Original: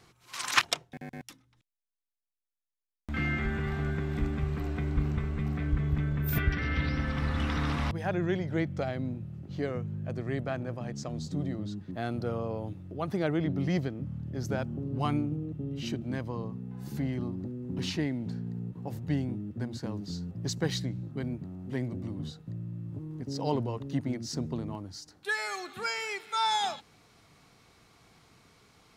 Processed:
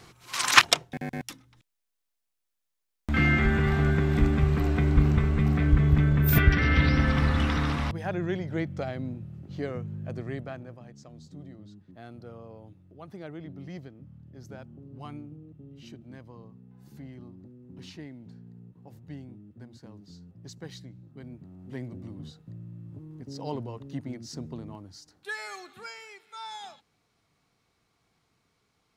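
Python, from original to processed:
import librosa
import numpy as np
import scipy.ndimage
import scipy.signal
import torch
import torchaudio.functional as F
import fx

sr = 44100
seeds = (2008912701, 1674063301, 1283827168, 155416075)

y = fx.gain(x, sr, db=fx.line((7.1, 8.0), (8.04, -0.5), (10.21, -0.5), (10.94, -12.0), (21.04, -12.0), (21.69, -4.5), (25.55, -4.5), (26.13, -12.5)))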